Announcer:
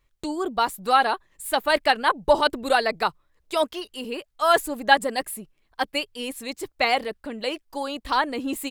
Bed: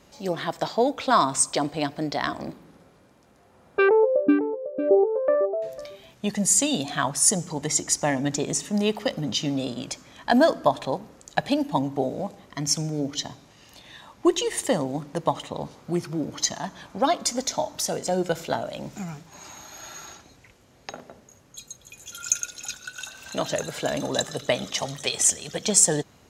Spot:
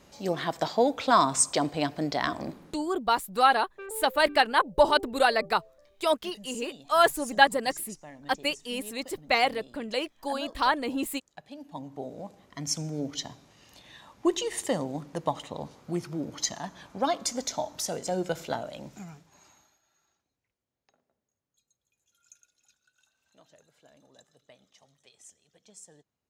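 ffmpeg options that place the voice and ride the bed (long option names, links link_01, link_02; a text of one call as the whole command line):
ffmpeg -i stem1.wav -i stem2.wav -filter_complex "[0:a]adelay=2500,volume=-2dB[link_01];[1:a]volume=16.5dB,afade=type=out:start_time=2.65:duration=0.34:silence=0.0841395,afade=type=in:start_time=11.49:duration=1.49:silence=0.125893,afade=type=out:start_time=18.53:duration=1.27:silence=0.0421697[link_02];[link_01][link_02]amix=inputs=2:normalize=0" out.wav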